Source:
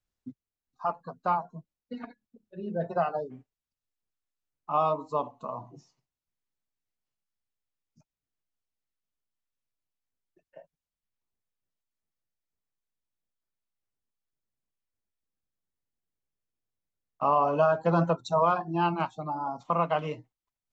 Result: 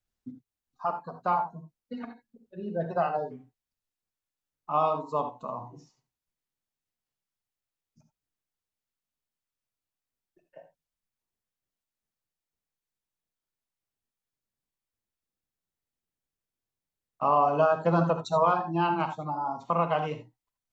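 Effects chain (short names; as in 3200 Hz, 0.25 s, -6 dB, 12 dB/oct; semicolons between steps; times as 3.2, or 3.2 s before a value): non-linear reverb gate 0.1 s rising, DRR 8 dB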